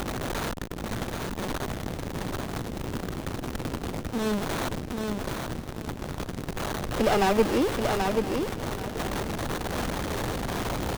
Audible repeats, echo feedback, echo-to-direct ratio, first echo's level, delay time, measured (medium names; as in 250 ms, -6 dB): 4, no regular repeats, -4.0 dB, -4.5 dB, 782 ms